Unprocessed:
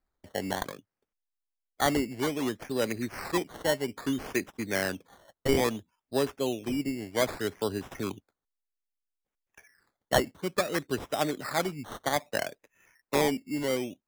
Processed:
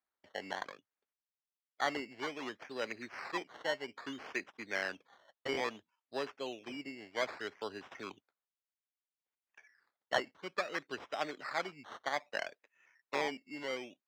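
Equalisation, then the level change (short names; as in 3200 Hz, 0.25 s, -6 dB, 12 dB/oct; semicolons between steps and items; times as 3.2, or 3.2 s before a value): dynamic EQ 3600 Hz, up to -6 dB, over -57 dBFS, Q 7.1; HPF 1500 Hz 6 dB/oct; air absorption 190 m; 0.0 dB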